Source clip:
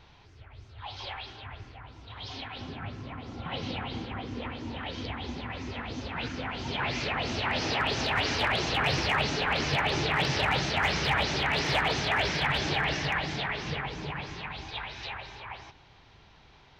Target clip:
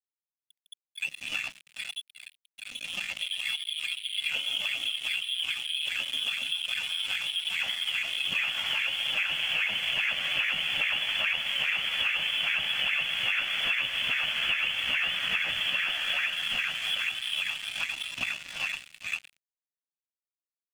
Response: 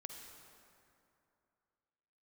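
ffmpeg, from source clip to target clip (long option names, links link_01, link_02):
-filter_complex "[0:a]adynamicequalizer=threshold=0.00501:dfrequency=130:dqfactor=3:tfrequency=130:tqfactor=3:attack=5:release=100:ratio=0.375:range=1.5:mode=cutabove:tftype=bell,atempo=0.81,lowpass=frequency=3000:width_type=q:width=0.5098,lowpass=frequency=3000:width_type=q:width=0.6013,lowpass=frequency=3000:width_type=q:width=0.9,lowpass=frequency=3000:width_type=q:width=2.563,afreqshift=-3500,asplit=2[link_01][link_02];[1:a]atrim=start_sample=2205[link_03];[link_02][link_03]afir=irnorm=-1:irlink=0,volume=2dB[link_04];[link_01][link_04]amix=inputs=2:normalize=0,afftdn=noise_reduction=26:noise_floor=-40,aeval=exprs='sgn(val(0))*max(abs(val(0))-0.0126,0)':channel_layout=same,equalizer=frequency=160:width_type=o:width=0.67:gain=4,equalizer=frequency=400:width_type=o:width=0.67:gain=-11,equalizer=frequency=1000:width_type=o:width=0.67:gain=-9,equalizer=frequency=2500:width_type=o:width=0.67:gain=10,acompressor=threshold=-34dB:ratio=5,volume=6.5dB"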